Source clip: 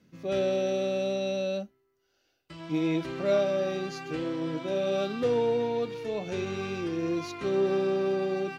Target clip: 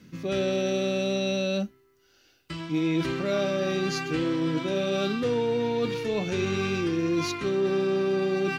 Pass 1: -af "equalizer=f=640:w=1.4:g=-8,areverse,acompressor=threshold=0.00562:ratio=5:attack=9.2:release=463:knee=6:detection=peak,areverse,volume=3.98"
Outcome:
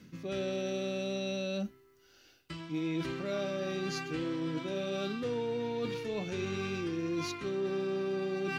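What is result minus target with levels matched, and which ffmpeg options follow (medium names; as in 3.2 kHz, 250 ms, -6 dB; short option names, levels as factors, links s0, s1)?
compression: peak gain reduction +8.5 dB
-af "equalizer=f=640:w=1.4:g=-8,areverse,acompressor=threshold=0.0188:ratio=5:attack=9.2:release=463:knee=6:detection=peak,areverse,volume=3.98"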